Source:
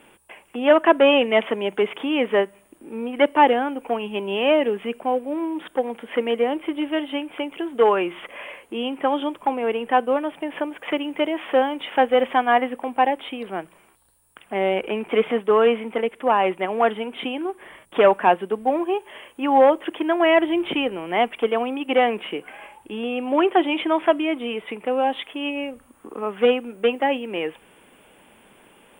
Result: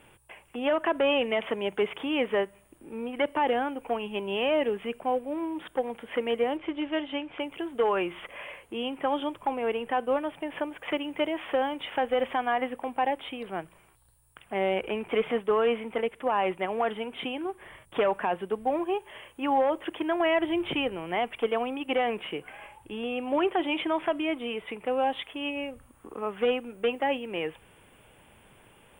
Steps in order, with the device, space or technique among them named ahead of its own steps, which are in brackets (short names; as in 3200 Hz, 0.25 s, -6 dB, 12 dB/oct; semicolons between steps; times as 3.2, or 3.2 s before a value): 6.57–7.4 LPF 6100 Hz 24 dB/oct; car stereo with a boomy subwoofer (resonant low shelf 160 Hz +9 dB, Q 1.5; limiter -12.5 dBFS, peak gain reduction 9 dB); gain -4.5 dB